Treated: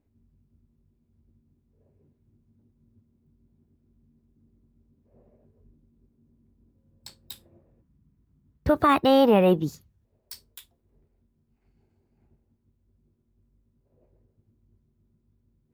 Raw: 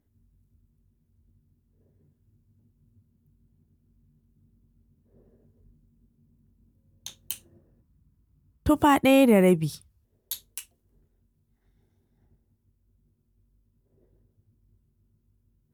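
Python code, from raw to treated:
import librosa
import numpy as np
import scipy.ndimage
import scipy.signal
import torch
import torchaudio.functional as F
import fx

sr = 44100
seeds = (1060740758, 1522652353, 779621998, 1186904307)

y = fx.formant_shift(x, sr, semitones=4)
y = fx.high_shelf(y, sr, hz=5700.0, db=-10.5)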